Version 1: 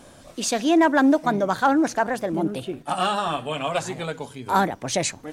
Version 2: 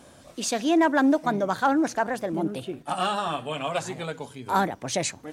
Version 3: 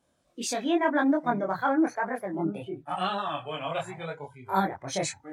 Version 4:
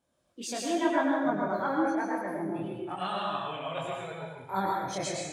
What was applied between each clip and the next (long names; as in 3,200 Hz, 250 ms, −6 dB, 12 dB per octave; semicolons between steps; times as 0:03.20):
high-pass filter 46 Hz; level −3 dB
noise reduction from a noise print of the clip's start 18 dB; multi-voice chorus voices 2, 0.94 Hz, delay 23 ms, depth 3 ms
dense smooth reverb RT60 0.97 s, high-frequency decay 0.95×, pre-delay 90 ms, DRR −1.5 dB; level −6 dB